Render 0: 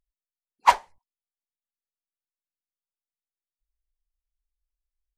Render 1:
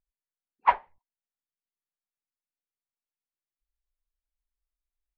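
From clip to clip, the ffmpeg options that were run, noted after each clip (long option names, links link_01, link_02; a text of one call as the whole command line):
ffmpeg -i in.wav -af "lowpass=frequency=2500:width=0.5412,lowpass=frequency=2500:width=1.3066,volume=-4dB" out.wav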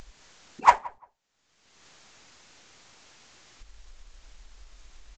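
ffmpeg -i in.wav -filter_complex "[0:a]acompressor=mode=upward:threshold=-25dB:ratio=2.5,aresample=16000,acrusher=bits=5:mode=log:mix=0:aa=0.000001,aresample=44100,asplit=2[link_01][link_02];[link_02]adelay=173,lowpass=frequency=1100:poles=1,volume=-19.5dB,asplit=2[link_03][link_04];[link_04]adelay=173,lowpass=frequency=1100:poles=1,volume=0.22[link_05];[link_01][link_03][link_05]amix=inputs=3:normalize=0,volume=4.5dB" out.wav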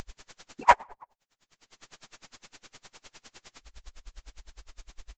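ffmpeg -i in.wav -af "aeval=exprs='val(0)*pow(10,-32*(0.5-0.5*cos(2*PI*9.8*n/s))/20)':channel_layout=same,volume=8.5dB" out.wav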